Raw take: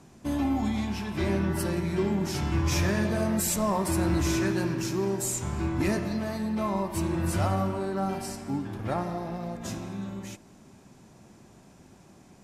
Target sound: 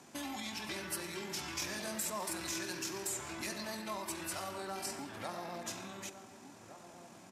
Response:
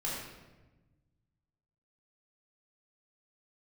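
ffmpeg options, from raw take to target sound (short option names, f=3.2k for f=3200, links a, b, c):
-filter_complex "[0:a]acrossover=split=1400|3200[a][b][c];[a]acompressor=threshold=-39dB:ratio=4[d];[b]acompressor=threshold=-52dB:ratio=4[e];[c]acompressor=threshold=-41dB:ratio=4[f];[d][e][f]amix=inputs=3:normalize=0,atempo=1.7,highpass=f=760:p=1,asplit=2[g][h];[h]adelay=1458,volume=-11dB,highshelf=f=4k:g=-32.8[i];[g][i]amix=inputs=2:normalize=0,asplit=2[j][k];[1:a]atrim=start_sample=2205,asetrate=30429,aresample=44100[l];[k][l]afir=irnorm=-1:irlink=0,volume=-19dB[m];[j][m]amix=inputs=2:normalize=0,volume=3dB"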